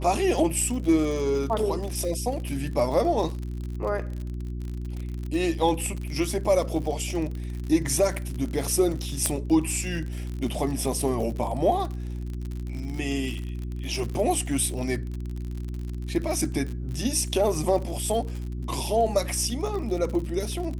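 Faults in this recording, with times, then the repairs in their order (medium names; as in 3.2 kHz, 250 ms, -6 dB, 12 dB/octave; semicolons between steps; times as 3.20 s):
crackle 50 per s -31 dBFS
hum 60 Hz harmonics 6 -32 dBFS
9.26 s: pop -8 dBFS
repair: de-click; de-hum 60 Hz, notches 6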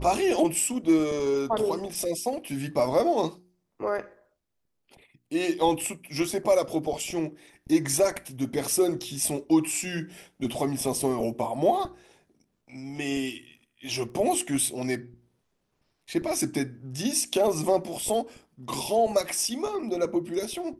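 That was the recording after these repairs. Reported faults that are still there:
nothing left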